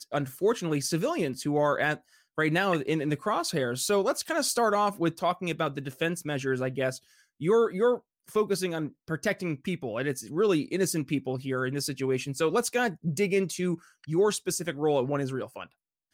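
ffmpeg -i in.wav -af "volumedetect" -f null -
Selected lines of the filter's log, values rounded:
mean_volume: -28.4 dB
max_volume: -14.4 dB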